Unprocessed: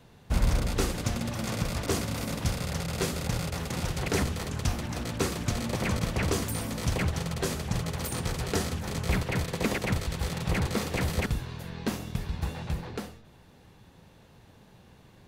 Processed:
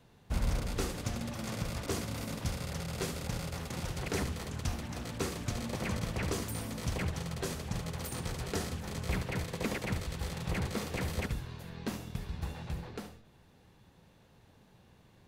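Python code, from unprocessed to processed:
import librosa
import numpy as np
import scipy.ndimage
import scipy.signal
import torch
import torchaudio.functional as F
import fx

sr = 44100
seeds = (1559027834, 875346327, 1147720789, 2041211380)

y = x + 10.0 ** (-12.5 / 20.0) * np.pad(x, (int(73 * sr / 1000.0), 0))[:len(x)]
y = y * 10.0 ** (-6.5 / 20.0)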